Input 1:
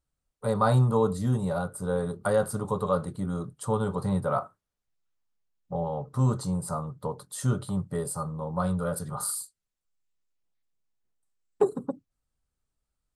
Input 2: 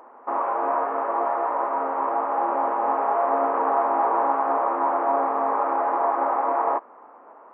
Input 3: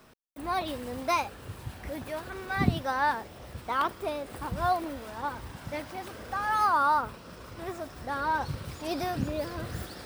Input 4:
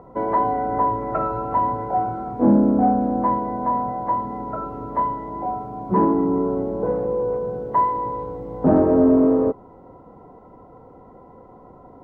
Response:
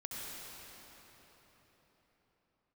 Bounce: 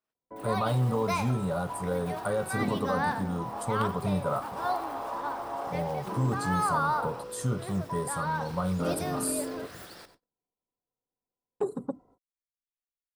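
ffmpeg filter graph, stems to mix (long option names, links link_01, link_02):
-filter_complex "[0:a]alimiter=limit=-18dB:level=0:latency=1:release=69,volume=-1.5dB,asplit=2[link_01][link_02];[1:a]adelay=450,volume=-13.5dB[link_03];[2:a]highpass=frequency=420:poles=1,volume=-3dB,asplit=2[link_04][link_05];[link_05]volume=-13.5dB[link_06];[3:a]adelay=150,volume=-19.5dB[link_07];[link_02]apad=whole_len=351990[link_08];[link_03][link_08]sidechaincompress=threshold=-40dB:ratio=8:attack=16:release=230[link_09];[link_06]aecho=0:1:93|186|279|372|465:1|0.37|0.137|0.0507|0.0187[link_10];[link_01][link_09][link_04][link_07][link_10]amix=inputs=5:normalize=0,agate=range=-31dB:threshold=-58dB:ratio=16:detection=peak"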